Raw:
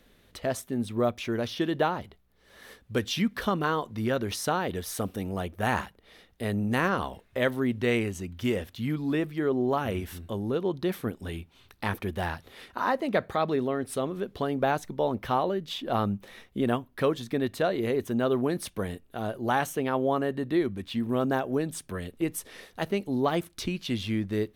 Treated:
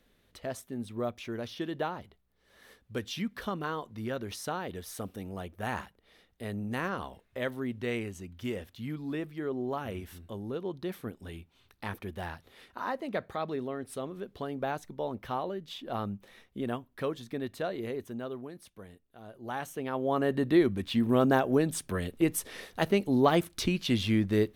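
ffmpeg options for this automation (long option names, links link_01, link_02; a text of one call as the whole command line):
ffmpeg -i in.wav -af "volume=12dB,afade=type=out:start_time=17.8:duration=0.71:silence=0.334965,afade=type=in:start_time=19.25:duration=0.79:silence=0.251189,afade=type=in:start_time=20.04:duration=0.33:silence=0.421697" out.wav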